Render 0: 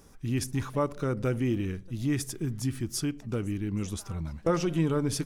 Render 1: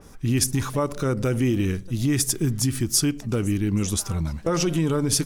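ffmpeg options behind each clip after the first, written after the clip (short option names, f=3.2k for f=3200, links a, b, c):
-af "alimiter=limit=-22.5dB:level=0:latency=1:release=89,adynamicequalizer=threshold=0.00224:dfrequency=3900:dqfactor=0.7:tfrequency=3900:tqfactor=0.7:attack=5:release=100:ratio=0.375:range=3.5:mode=boostabove:tftype=highshelf,volume=8.5dB"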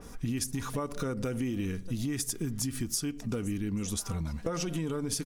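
-af "aecho=1:1:4.2:0.3,acompressor=threshold=-30dB:ratio=6"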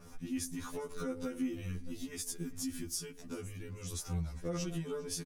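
-af "aecho=1:1:403:0.0794,afftfilt=real='re*2*eq(mod(b,4),0)':imag='im*2*eq(mod(b,4),0)':win_size=2048:overlap=0.75,volume=-4dB"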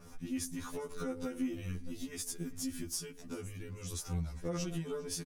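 -af "aeval=exprs='0.0668*(cos(1*acos(clip(val(0)/0.0668,-1,1)))-cos(1*PI/2))+0.00299*(cos(4*acos(clip(val(0)/0.0668,-1,1)))-cos(4*PI/2))':c=same"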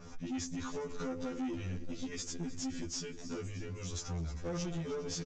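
-af "aecho=1:1:312|624|936|1248|1560|1872:0.15|0.0883|0.0521|0.0307|0.0181|0.0107,aresample=16000,asoftclip=type=tanh:threshold=-37dB,aresample=44100,volume=4dB"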